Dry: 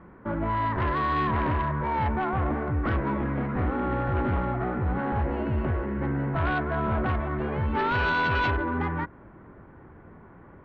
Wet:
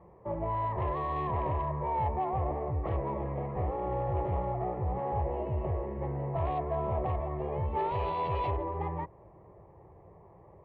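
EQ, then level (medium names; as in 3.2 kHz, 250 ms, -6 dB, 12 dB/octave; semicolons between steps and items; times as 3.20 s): high-pass 90 Hz 6 dB/octave; low-pass 1.7 kHz 12 dB/octave; static phaser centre 610 Hz, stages 4; 0.0 dB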